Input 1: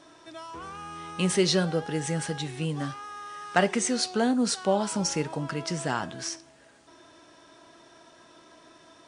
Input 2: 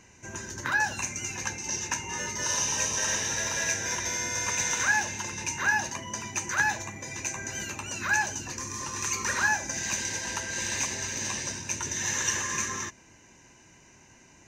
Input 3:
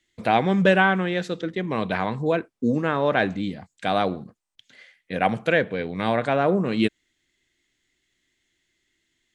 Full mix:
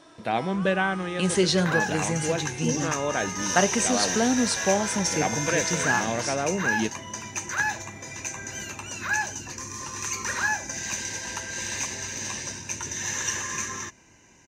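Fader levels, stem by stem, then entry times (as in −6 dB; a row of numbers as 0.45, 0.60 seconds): +1.0, −0.5, −6.5 decibels; 0.00, 1.00, 0.00 seconds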